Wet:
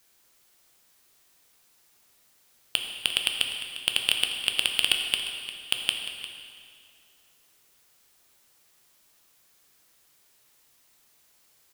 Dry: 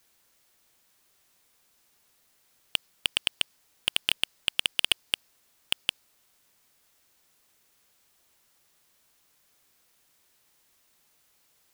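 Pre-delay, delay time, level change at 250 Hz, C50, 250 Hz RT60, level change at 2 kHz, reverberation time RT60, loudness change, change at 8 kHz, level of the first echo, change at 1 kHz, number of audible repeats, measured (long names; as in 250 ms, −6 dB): 8 ms, 351 ms, +2.0 dB, 4.0 dB, 2.3 s, +3.0 dB, 2.3 s, +2.5 dB, +4.0 dB, −14.5 dB, +2.0 dB, 1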